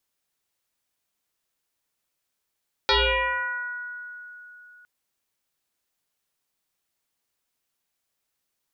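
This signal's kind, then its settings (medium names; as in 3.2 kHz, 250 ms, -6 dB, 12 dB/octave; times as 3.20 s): FM tone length 1.96 s, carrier 1.46 kHz, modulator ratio 0.32, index 6.7, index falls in 1.90 s exponential, decay 3.52 s, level -16 dB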